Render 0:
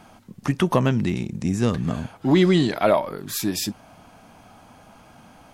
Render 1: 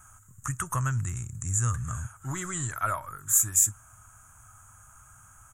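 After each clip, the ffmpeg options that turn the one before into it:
-af "firequalizer=gain_entry='entry(110,0);entry(190,-25);entry(410,-26);entry(760,-20);entry(1300,1);entry(2100,-15);entry(4700,-27);entry(6900,14);entry(11000,3)':delay=0.05:min_phase=1,volume=1dB"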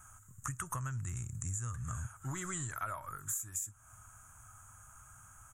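-af "acompressor=threshold=-32dB:ratio=16,volume=-3dB"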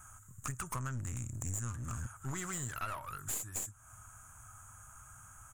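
-af "aeval=exprs='clip(val(0),-1,0.00668)':c=same,volume=2dB"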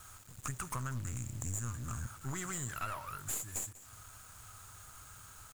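-af "acrusher=bits=8:mix=0:aa=0.000001,aecho=1:1:194:0.133"

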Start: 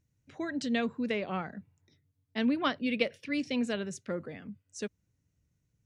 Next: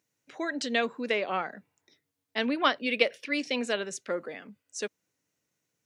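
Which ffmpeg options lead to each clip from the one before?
-af "highpass=420,volume=6.5dB"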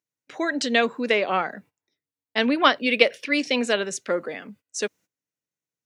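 -af "agate=range=-20dB:threshold=-56dB:ratio=16:detection=peak,volume=7dB"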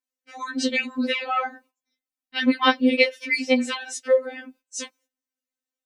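-af "afftfilt=real='re*3.46*eq(mod(b,12),0)':imag='im*3.46*eq(mod(b,12),0)':win_size=2048:overlap=0.75,volume=1.5dB"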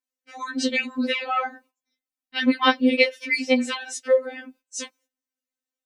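-af anull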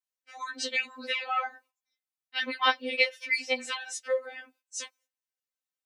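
-af "highpass=680,volume=-4dB"

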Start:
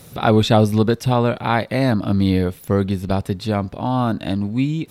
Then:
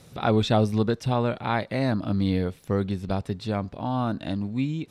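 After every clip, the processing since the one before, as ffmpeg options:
-af "lowpass=8.3k,volume=-7dB"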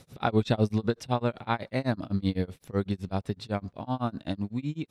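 -af "tremolo=f=7.9:d=0.98"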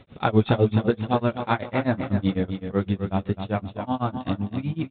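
-af "flanger=delay=3:depth=8.5:regen=-42:speed=0.79:shape=sinusoidal,aecho=1:1:259|518|777|1036:0.398|0.131|0.0434|0.0143,volume=8.5dB" -ar 8000 -c:a adpcm_g726 -b:a 40k

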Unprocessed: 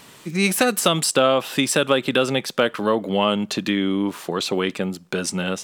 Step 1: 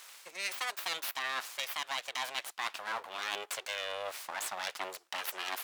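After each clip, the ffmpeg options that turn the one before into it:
-af "aeval=exprs='abs(val(0))':c=same,highpass=900,areverse,acompressor=threshold=-33dB:ratio=5,areverse,volume=-1dB"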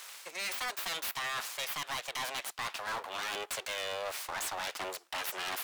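-filter_complex "[0:a]highpass=97,acrossover=split=160[a][b];[b]asoftclip=type=hard:threshold=-37dB[c];[a][c]amix=inputs=2:normalize=0,volume=4.5dB"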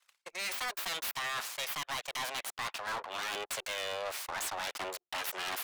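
-af "anlmdn=0.0631,agate=range=-10dB:threshold=-57dB:ratio=16:detection=peak"

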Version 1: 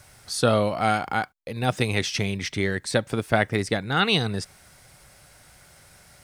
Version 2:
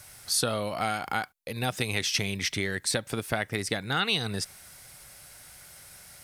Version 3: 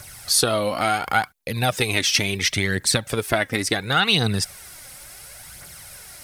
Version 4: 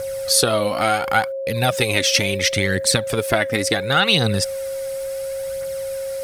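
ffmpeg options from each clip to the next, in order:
-af "equalizer=f=12k:t=o:w=0.38:g=8,acompressor=threshold=-23dB:ratio=6,tiltshelf=f=1.5k:g=-3.5"
-af "aphaser=in_gain=1:out_gain=1:delay=4:decay=0.46:speed=0.71:type=triangular,volume=7dB"
-af "aeval=exprs='val(0)+0.0501*sin(2*PI*540*n/s)':c=same,volume=2dB"

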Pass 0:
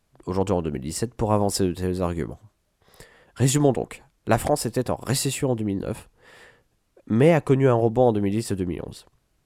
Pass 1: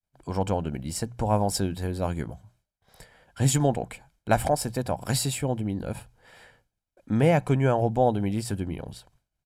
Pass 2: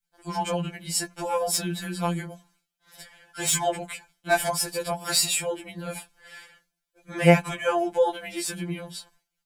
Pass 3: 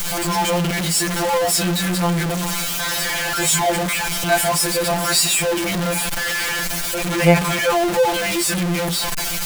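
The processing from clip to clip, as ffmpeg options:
-af "bandreject=f=60:t=h:w=6,bandreject=f=120:t=h:w=6,bandreject=f=180:t=h:w=6,aecho=1:1:1.3:0.47,agate=range=-33dB:threshold=-55dB:ratio=3:detection=peak,volume=-3dB"
-filter_complex "[0:a]acrossover=split=1200[a][b];[b]aeval=exprs='0.237*sin(PI/2*2*val(0)/0.237)':c=same[c];[a][c]amix=inputs=2:normalize=0,afftfilt=real='re*2.83*eq(mod(b,8),0)':imag='im*2.83*eq(mod(b,8),0)':win_size=2048:overlap=0.75"
-af "aeval=exprs='val(0)+0.5*0.133*sgn(val(0))':c=same,volume=1dB"

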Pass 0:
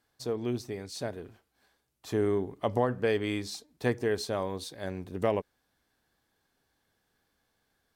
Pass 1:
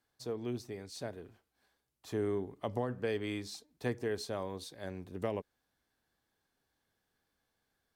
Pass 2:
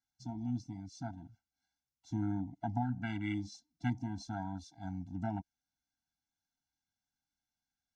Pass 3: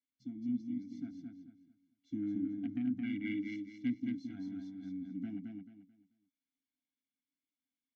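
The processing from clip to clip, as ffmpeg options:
-filter_complex "[0:a]acrossover=split=390|3000[a][b][c];[b]acompressor=threshold=-28dB:ratio=6[d];[a][d][c]amix=inputs=3:normalize=0,volume=-6dB"
-af "afwtdn=0.00708,lowpass=f=6.1k:t=q:w=4.4,afftfilt=real='re*eq(mod(floor(b*sr/1024/330),2),0)':imag='im*eq(mod(floor(b*sr/1024/330),2),0)':win_size=1024:overlap=0.75,volume=4.5dB"
-filter_complex "[0:a]aeval=exprs='0.0891*(cos(1*acos(clip(val(0)/0.0891,-1,1)))-cos(1*PI/2))+0.0158*(cos(5*acos(clip(val(0)/0.0891,-1,1)))-cos(5*PI/2))+0.01*(cos(7*acos(clip(val(0)/0.0891,-1,1)))-cos(7*PI/2))':c=same,asplit=3[a][b][c];[a]bandpass=f=270:t=q:w=8,volume=0dB[d];[b]bandpass=f=2.29k:t=q:w=8,volume=-6dB[e];[c]bandpass=f=3.01k:t=q:w=8,volume=-9dB[f];[d][e][f]amix=inputs=3:normalize=0,asplit=2[g][h];[h]aecho=0:1:219|438|657|876:0.631|0.177|0.0495|0.0139[i];[g][i]amix=inputs=2:normalize=0,volume=6dB"

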